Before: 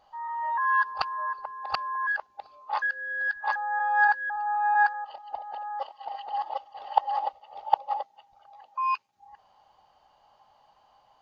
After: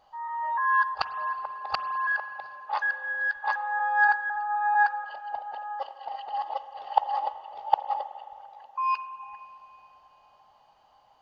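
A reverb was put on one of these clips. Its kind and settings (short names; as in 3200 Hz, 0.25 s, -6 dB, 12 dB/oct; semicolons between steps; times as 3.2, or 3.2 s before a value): spring tank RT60 2.9 s, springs 41/53 ms, chirp 60 ms, DRR 11 dB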